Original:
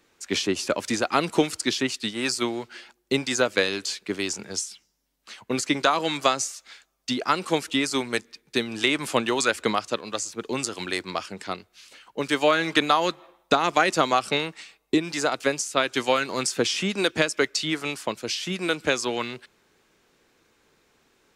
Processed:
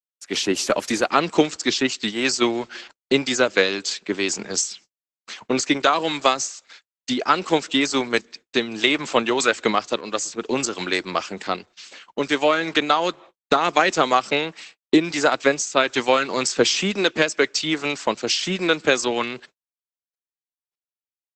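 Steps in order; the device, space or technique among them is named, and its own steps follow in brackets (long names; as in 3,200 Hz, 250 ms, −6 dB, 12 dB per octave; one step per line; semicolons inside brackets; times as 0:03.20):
video call (high-pass filter 160 Hz 12 dB per octave; automatic gain control gain up to 10.5 dB; noise gate −42 dBFS, range −52 dB; level −1 dB; Opus 12 kbit/s 48,000 Hz)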